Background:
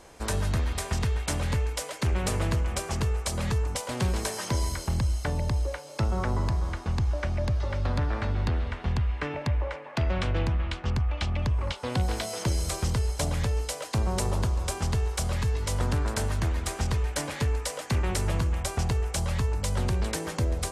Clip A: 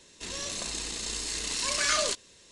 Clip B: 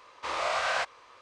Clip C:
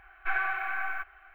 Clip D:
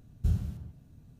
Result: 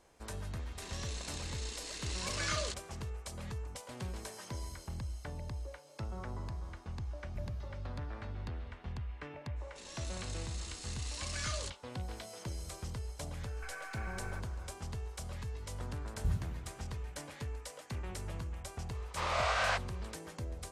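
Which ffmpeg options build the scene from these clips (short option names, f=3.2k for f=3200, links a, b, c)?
-filter_complex "[1:a]asplit=2[a][b];[4:a]asplit=2[c][d];[0:a]volume=-14.5dB[e];[a]highshelf=f=8.2k:g=-9.5[f];[c]aresample=32000,aresample=44100[g];[3:a]acompressor=threshold=-37dB:ratio=6:attack=3.2:release=140:knee=1:detection=peak[h];[f]atrim=end=2.51,asetpts=PTS-STARTPTS,volume=-8.5dB,afade=t=in:d=0.004:c=hsin,afade=t=out:st=2.506:d=0.004:c=hsin,adelay=590[i];[g]atrim=end=1.19,asetpts=PTS-STARTPTS,volume=-15.5dB,afade=t=in:d=0.004:c=hsin,afade=t=out:st=1.186:d=0.004:c=hsin,adelay=7110[j];[b]atrim=end=2.51,asetpts=PTS-STARTPTS,volume=-13.5dB,afade=t=in:d=0.05,afade=t=out:st=2.46:d=0.05,adelay=9550[k];[h]atrim=end=1.34,asetpts=PTS-STARTPTS,volume=-5.5dB,afade=t=in:d=0.004:c=hsin,afade=t=out:st=1.336:d=0.004:c=hsin,adelay=13370[l];[d]atrim=end=1.19,asetpts=PTS-STARTPTS,volume=-6.5dB,afade=t=in:d=0.004:c=hsin,afade=t=out:st=1.186:d=0.004:c=hsin,adelay=16000[m];[2:a]atrim=end=1.21,asetpts=PTS-STARTPTS,volume=-3dB,afade=t=in:d=0.004:c=hsin,afade=t=out:st=1.206:d=0.004:c=hsin,adelay=18930[n];[e][i][j][k][l][m][n]amix=inputs=7:normalize=0"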